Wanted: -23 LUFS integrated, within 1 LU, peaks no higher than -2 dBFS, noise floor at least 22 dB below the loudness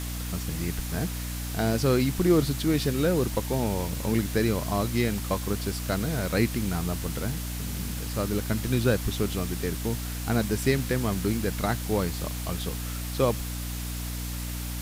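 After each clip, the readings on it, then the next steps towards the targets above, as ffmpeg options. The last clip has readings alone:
hum 60 Hz; harmonics up to 300 Hz; hum level -31 dBFS; noise floor -33 dBFS; noise floor target -50 dBFS; loudness -28.0 LUFS; peak -9.5 dBFS; loudness target -23.0 LUFS
-> -af "bandreject=f=60:t=h:w=6,bandreject=f=120:t=h:w=6,bandreject=f=180:t=h:w=6,bandreject=f=240:t=h:w=6,bandreject=f=300:t=h:w=6"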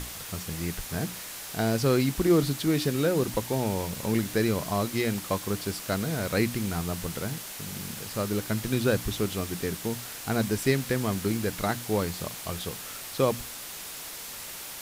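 hum none; noise floor -40 dBFS; noise floor target -51 dBFS
-> -af "afftdn=nr=11:nf=-40"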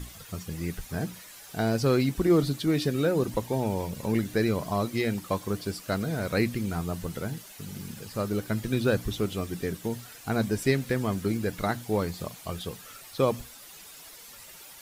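noise floor -48 dBFS; noise floor target -51 dBFS
-> -af "afftdn=nr=6:nf=-48"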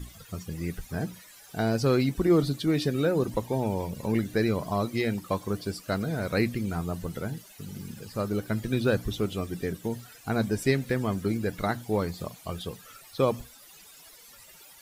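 noise floor -52 dBFS; loudness -29.0 LUFS; peak -11.5 dBFS; loudness target -23.0 LUFS
-> -af "volume=6dB"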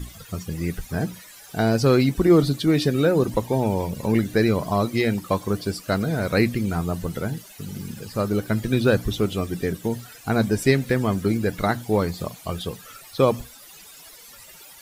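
loudness -23.0 LUFS; peak -5.5 dBFS; noise floor -46 dBFS

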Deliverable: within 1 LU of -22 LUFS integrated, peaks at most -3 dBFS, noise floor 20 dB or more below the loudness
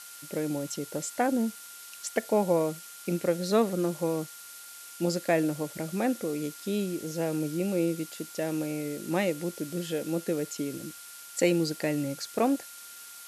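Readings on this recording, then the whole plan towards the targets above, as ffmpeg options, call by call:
steady tone 1400 Hz; tone level -52 dBFS; noise floor -46 dBFS; noise floor target -50 dBFS; loudness -30.0 LUFS; peak -9.5 dBFS; loudness target -22.0 LUFS
-> -af "bandreject=f=1.4k:w=30"
-af "afftdn=nr=6:nf=-46"
-af "volume=8dB,alimiter=limit=-3dB:level=0:latency=1"

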